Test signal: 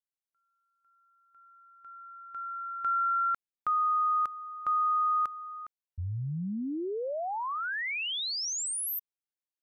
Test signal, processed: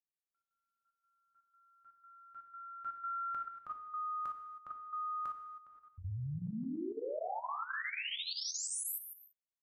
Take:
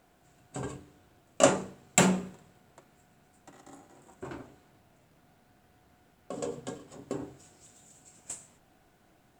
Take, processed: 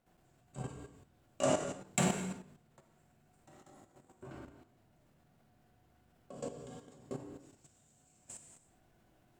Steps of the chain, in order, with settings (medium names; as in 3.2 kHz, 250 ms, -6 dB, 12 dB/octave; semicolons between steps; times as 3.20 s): bass shelf 250 Hz +6 dB; gated-style reverb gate 350 ms falling, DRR -1 dB; level held to a coarse grid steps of 10 dB; trim -8.5 dB